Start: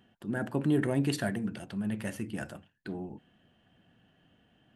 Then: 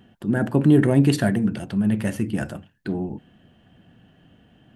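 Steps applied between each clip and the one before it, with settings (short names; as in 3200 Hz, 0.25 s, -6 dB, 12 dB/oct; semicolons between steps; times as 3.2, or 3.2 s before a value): low shelf 430 Hz +6.5 dB; gain +7 dB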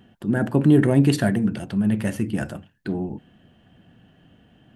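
nothing audible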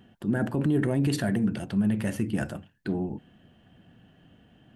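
limiter -14 dBFS, peak gain reduction 8.5 dB; gain -2.5 dB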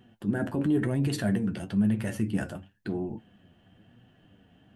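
flange 0.99 Hz, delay 7.9 ms, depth 3.6 ms, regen +46%; gain +2 dB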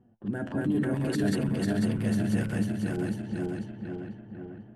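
regenerating reverse delay 0.248 s, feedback 76%, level 0 dB; low-pass opened by the level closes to 820 Hz, open at -22.5 dBFS; gain -4 dB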